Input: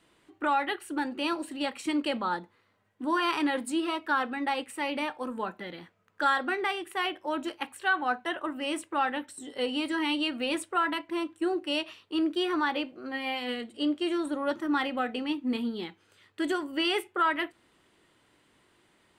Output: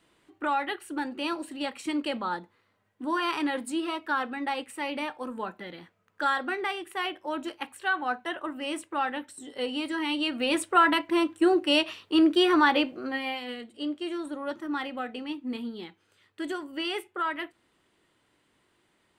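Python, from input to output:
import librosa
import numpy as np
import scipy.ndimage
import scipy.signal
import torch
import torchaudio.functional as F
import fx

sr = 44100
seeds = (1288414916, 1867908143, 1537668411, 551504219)

y = fx.gain(x, sr, db=fx.line((10.07, -1.0), (10.79, 7.0), (12.96, 7.0), (13.48, -4.0)))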